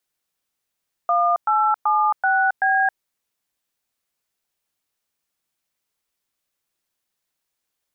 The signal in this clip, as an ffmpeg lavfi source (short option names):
-f lavfi -i "aevalsrc='0.126*clip(min(mod(t,0.382),0.271-mod(t,0.382))/0.002,0,1)*(eq(floor(t/0.382),0)*(sin(2*PI*697*mod(t,0.382))+sin(2*PI*1209*mod(t,0.382)))+eq(floor(t/0.382),1)*(sin(2*PI*852*mod(t,0.382))+sin(2*PI*1336*mod(t,0.382)))+eq(floor(t/0.382),2)*(sin(2*PI*852*mod(t,0.382))+sin(2*PI*1209*mod(t,0.382)))+eq(floor(t/0.382),3)*(sin(2*PI*770*mod(t,0.382))+sin(2*PI*1477*mod(t,0.382)))+eq(floor(t/0.382),4)*(sin(2*PI*770*mod(t,0.382))+sin(2*PI*1633*mod(t,0.382))))':d=1.91:s=44100"